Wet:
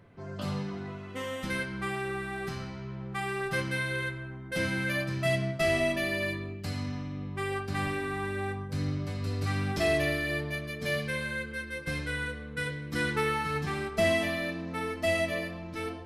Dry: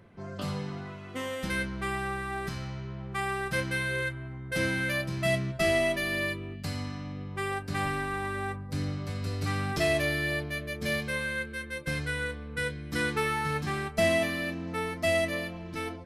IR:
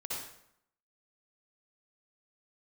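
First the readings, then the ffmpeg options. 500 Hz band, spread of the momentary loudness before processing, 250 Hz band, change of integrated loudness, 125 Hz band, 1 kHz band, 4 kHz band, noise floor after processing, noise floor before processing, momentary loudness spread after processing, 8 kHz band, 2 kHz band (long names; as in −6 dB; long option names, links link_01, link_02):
−0.5 dB, 10 LU, 0.0 dB, −0.5 dB, 0.0 dB, −1.5 dB, −1.5 dB, −41 dBFS, −41 dBFS, 10 LU, −3.0 dB, −1.0 dB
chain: -filter_complex "[0:a]flanger=delay=6.7:depth=4.6:regen=-58:speed=0.55:shape=triangular,asplit=2[link_01][link_02];[1:a]atrim=start_sample=2205,lowpass=6500[link_03];[link_02][link_03]afir=irnorm=-1:irlink=0,volume=-9dB[link_04];[link_01][link_04]amix=inputs=2:normalize=0,volume=1.5dB"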